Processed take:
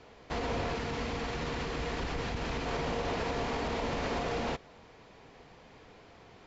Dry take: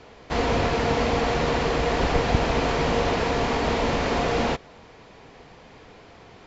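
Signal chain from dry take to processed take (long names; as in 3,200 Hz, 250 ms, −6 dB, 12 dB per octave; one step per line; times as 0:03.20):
brickwall limiter −17.5 dBFS, peak gain reduction 10 dB
0:00.75–0:02.66: parametric band 630 Hz −5.5 dB 1.2 octaves
level −7 dB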